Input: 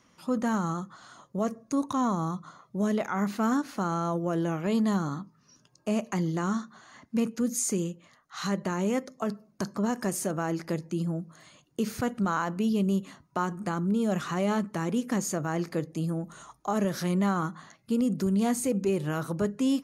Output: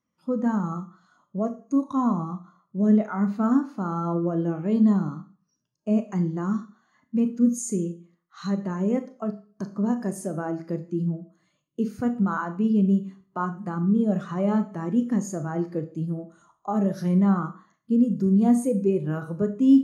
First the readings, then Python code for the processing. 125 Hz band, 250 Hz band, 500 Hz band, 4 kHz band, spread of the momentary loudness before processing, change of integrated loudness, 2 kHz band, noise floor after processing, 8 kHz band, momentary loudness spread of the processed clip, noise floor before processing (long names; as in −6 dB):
+4.0 dB, +5.5 dB, +1.5 dB, can't be measured, 10 LU, +4.5 dB, −3.5 dB, −76 dBFS, −5.0 dB, 12 LU, −65 dBFS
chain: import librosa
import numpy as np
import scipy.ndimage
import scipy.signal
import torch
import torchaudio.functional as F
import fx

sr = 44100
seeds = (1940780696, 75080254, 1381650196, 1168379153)

y = fx.rev_schroeder(x, sr, rt60_s=0.58, comb_ms=26, drr_db=6.5)
y = fx.spectral_expand(y, sr, expansion=1.5)
y = y * librosa.db_to_amplitude(6.0)